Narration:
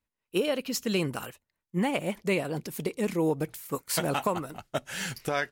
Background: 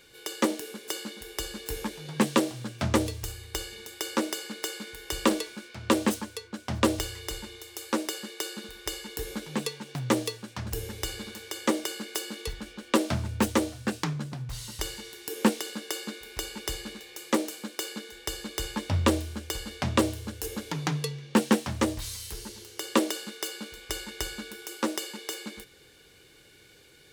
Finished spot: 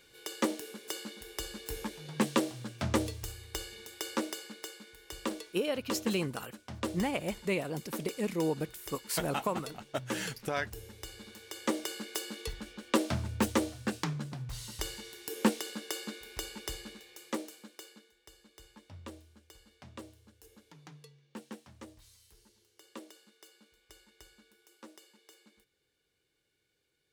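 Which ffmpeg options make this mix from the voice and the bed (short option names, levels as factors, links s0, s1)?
-filter_complex "[0:a]adelay=5200,volume=0.596[s0];[1:a]volume=1.41,afade=t=out:st=4.1:d=0.69:silence=0.446684,afade=t=in:st=11.11:d=0.86:silence=0.398107,afade=t=out:st=16.2:d=1.95:silence=0.105925[s1];[s0][s1]amix=inputs=2:normalize=0"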